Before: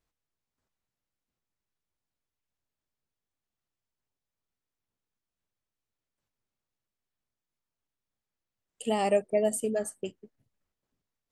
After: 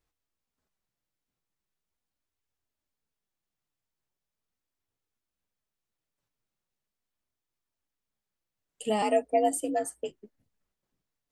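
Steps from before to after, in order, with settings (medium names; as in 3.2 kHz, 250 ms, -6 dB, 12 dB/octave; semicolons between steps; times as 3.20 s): flange 0.4 Hz, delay 2.2 ms, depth 4.9 ms, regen -53%; 9.02–10.11 s: frequency shift +58 Hz; trim +4.5 dB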